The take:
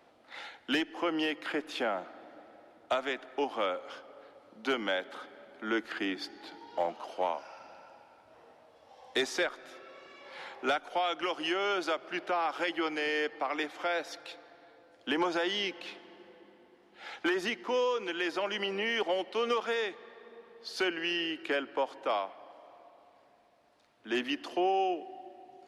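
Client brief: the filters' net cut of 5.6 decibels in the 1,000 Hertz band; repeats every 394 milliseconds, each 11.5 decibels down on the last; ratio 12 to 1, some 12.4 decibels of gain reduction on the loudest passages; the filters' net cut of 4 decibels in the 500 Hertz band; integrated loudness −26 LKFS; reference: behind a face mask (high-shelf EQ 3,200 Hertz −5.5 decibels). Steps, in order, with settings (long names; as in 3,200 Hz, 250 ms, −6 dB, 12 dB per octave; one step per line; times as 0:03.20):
parametric band 500 Hz −3.5 dB
parametric band 1,000 Hz −6 dB
downward compressor 12 to 1, threshold −40 dBFS
high-shelf EQ 3,200 Hz −5.5 dB
repeating echo 394 ms, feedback 27%, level −11.5 dB
level +20 dB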